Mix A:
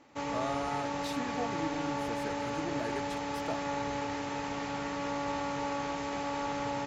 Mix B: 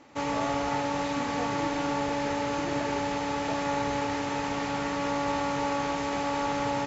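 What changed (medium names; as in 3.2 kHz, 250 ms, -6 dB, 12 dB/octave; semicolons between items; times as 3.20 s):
speech: add distance through air 150 m; background +5.5 dB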